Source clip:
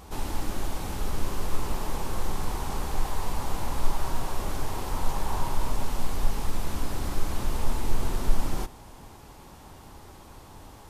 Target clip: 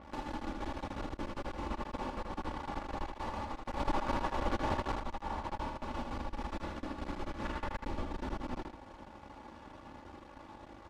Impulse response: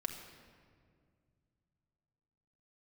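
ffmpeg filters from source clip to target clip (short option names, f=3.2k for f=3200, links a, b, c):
-filter_complex "[0:a]aeval=exprs='max(val(0),0)':c=same,highpass=f=110:p=1,alimiter=level_in=5.5dB:limit=-24dB:level=0:latency=1:release=331,volume=-5.5dB,asettb=1/sr,asplit=3[a][b][c];[a]atrim=end=7.454[d];[b]atrim=start=7.45:end=7.86,asetpts=PTS-STARTPTS,afade=t=in:d=0.004:c=qsin,afade=t=out:st=0.406:d=0.004:c=qsin,equalizer=f=1.7k:w=1.1:g=9[e];[c]atrim=start=7.856[f];[d][e]acrossfade=d=0.004:c1=hsin:c2=qsin[g];[g][f]acrossfade=d=0.004:c1=qsin:c2=hsin,adynamicsmooth=sensitivity=6:basefreq=2.9k,aecho=1:1:3.5:0.55,asplit=3[h][i][j];[h]afade=t=out:st=3.79:d=0.02[k];[i]acontrast=68,afade=t=in:st=3.79:d=0.02,afade=t=out:st=4.92:d=0.02[l];[j]afade=t=in:st=4.92:d=0.02[m];[k][l][m]amix=inputs=3:normalize=0,aecho=1:1:79|158|237:0.596|0.119|0.0238,adynamicequalizer=threshold=0.00126:dfrequency=5800:dqfactor=0.7:tfrequency=5800:tqfactor=0.7:attack=5:release=100:ratio=0.375:range=2:mode=cutabove:tftype=highshelf,volume=1dB"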